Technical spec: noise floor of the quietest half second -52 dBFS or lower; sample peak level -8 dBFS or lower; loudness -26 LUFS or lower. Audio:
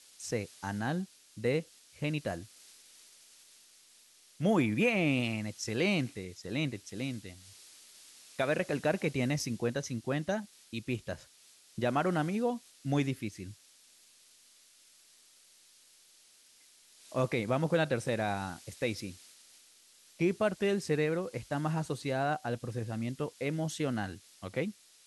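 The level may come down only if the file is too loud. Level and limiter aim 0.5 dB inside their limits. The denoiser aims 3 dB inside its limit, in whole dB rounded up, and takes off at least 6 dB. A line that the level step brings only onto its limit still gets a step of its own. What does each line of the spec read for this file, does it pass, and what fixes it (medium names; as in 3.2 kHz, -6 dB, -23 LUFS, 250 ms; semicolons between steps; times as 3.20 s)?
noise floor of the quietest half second -62 dBFS: pass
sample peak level -16.5 dBFS: pass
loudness -33.5 LUFS: pass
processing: none needed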